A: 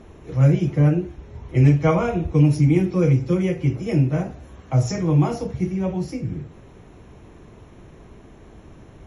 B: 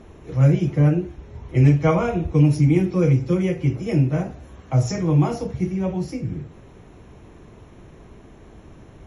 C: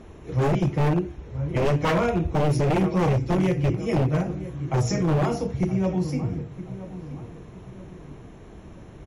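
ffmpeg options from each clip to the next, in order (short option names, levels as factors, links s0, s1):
-af anull
-filter_complex "[0:a]asplit=2[s0][s1];[s1]adelay=972,lowpass=f=1500:p=1,volume=0.2,asplit=2[s2][s3];[s3]adelay=972,lowpass=f=1500:p=1,volume=0.42,asplit=2[s4][s5];[s5]adelay=972,lowpass=f=1500:p=1,volume=0.42,asplit=2[s6][s7];[s7]adelay=972,lowpass=f=1500:p=1,volume=0.42[s8];[s0][s2][s4][s6][s8]amix=inputs=5:normalize=0,aeval=exprs='0.168*(abs(mod(val(0)/0.168+3,4)-2)-1)':c=same"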